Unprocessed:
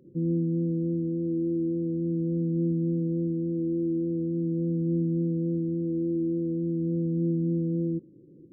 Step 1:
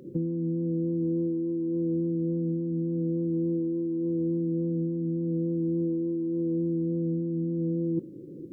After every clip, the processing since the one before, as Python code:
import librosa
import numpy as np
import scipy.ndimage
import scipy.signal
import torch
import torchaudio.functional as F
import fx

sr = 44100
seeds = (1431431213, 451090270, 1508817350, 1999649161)

y = fx.low_shelf(x, sr, hz=230.0, db=-8.0)
y = fx.over_compress(y, sr, threshold_db=-36.0, ratio=-1.0)
y = y * 10.0 ** (8.0 / 20.0)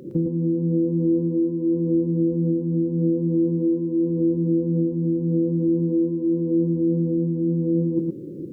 y = x + 10.0 ** (-4.0 / 20.0) * np.pad(x, (int(112 * sr / 1000.0), 0))[:len(x)]
y = y * 10.0 ** (6.5 / 20.0)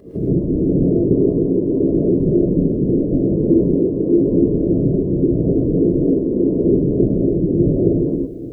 y = fx.whisperise(x, sr, seeds[0])
y = fx.rev_gated(y, sr, seeds[1], gate_ms=180, shape='rising', drr_db=-7.0)
y = y * 10.0 ** (-3.0 / 20.0)